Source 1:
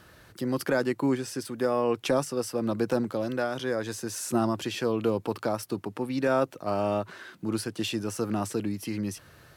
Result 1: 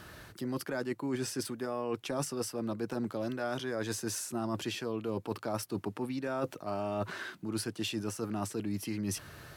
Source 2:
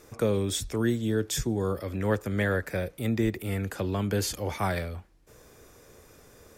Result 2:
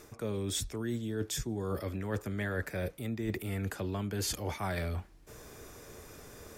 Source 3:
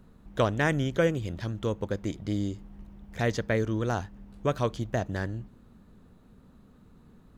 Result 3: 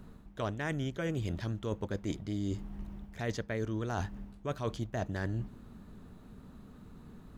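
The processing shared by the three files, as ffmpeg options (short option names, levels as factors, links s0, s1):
-af "bandreject=f=510:w=12,areverse,acompressor=threshold=0.0178:ratio=10,areverse,volume=1.58"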